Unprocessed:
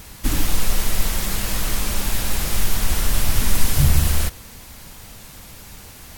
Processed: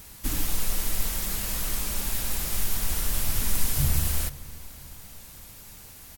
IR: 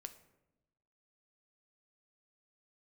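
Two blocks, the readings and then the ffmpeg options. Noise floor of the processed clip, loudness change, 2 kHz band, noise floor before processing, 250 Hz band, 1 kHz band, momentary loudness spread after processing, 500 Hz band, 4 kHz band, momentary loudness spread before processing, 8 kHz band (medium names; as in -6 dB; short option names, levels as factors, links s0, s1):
-47 dBFS, -5.5 dB, -8.5 dB, -41 dBFS, -9.0 dB, -9.0 dB, 19 LU, -9.0 dB, -7.0 dB, 21 LU, -4.0 dB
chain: -filter_complex "[0:a]highshelf=f=7100:g=8,asplit=2[s0][s1];[s1]adelay=504,lowpass=f=2000:p=1,volume=0.119,asplit=2[s2][s3];[s3]adelay=504,lowpass=f=2000:p=1,volume=0.5,asplit=2[s4][s5];[s5]adelay=504,lowpass=f=2000:p=1,volume=0.5,asplit=2[s6][s7];[s7]adelay=504,lowpass=f=2000:p=1,volume=0.5[s8];[s2][s4][s6][s8]amix=inputs=4:normalize=0[s9];[s0][s9]amix=inputs=2:normalize=0,volume=0.355"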